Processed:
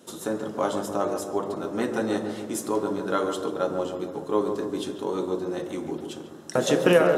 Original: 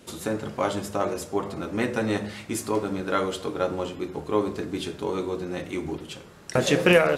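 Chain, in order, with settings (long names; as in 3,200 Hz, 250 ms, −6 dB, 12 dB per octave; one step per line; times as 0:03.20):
high-pass filter 180 Hz 12 dB per octave
parametric band 2,300 Hz −10.5 dB 0.61 octaves
notch filter 4,600 Hz, Q 10
feedback echo with a low-pass in the loop 143 ms, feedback 63%, low-pass 1,300 Hz, level −6 dB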